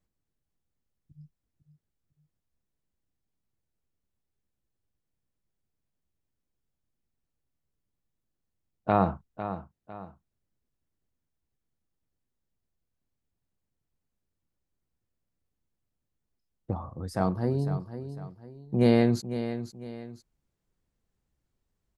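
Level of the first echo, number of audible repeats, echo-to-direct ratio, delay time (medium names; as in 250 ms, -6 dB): -11.0 dB, 2, -10.5 dB, 502 ms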